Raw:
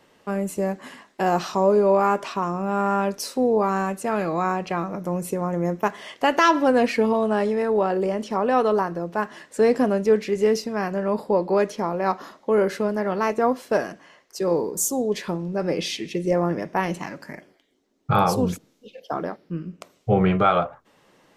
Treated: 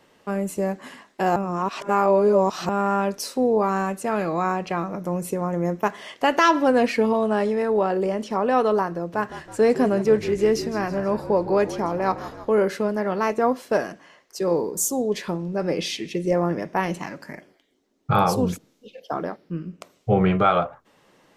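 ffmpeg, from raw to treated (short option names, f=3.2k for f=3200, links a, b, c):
-filter_complex "[0:a]asettb=1/sr,asplit=3[a][b][c];[a]atrim=end=8.974[d];[b]atrim=start=8.97:end=12.52,asetpts=PTS-STARTPTS,afade=t=in:d=0.004:c=qsin,afade=t=out:st=3.546:d=0.004:c=qsin,asplit=7[e][f][g][h][i][j][k];[f]adelay=161,afreqshift=-51,volume=-13.5dB[l];[g]adelay=322,afreqshift=-102,volume=-18.5dB[m];[h]adelay=483,afreqshift=-153,volume=-23.6dB[n];[i]adelay=644,afreqshift=-204,volume=-28.6dB[o];[j]adelay=805,afreqshift=-255,volume=-33.6dB[p];[k]adelay=966,afreqshift=-306,volume=-38.7dB[q];[e][l][m][n][o][p][q]amix=inputs=7:normalize=0,atrim=end_sample=156555[r];[c]atrim=start=12.516[s];[d][r]acrossfade=d=0.004:c1=hsin:c2=qsin[t];[t][s]acrossfade=d=0.004:c1=qsin:c2=hsin,asplit=3[u][v][w];[u]atrim=end=1.362[x];[v]atrim=start=1.358:end=2.692,asetpts=PTS-STARTPTS,areverse[y];[w]atrim=start=2.688[z];[x][y]acrossfade=d=0.004:c1=hsin:c2=hsin[aa];[aa][z]acrossfade=d=0.004:c1=hsin:c2=hsin"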